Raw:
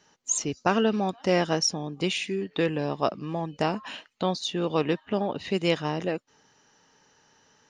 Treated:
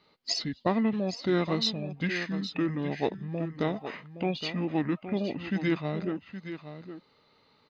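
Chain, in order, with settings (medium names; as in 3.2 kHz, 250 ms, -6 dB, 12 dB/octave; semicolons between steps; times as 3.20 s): formant shift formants -6 st; delay 818 ms -11 dB; trim -3 dB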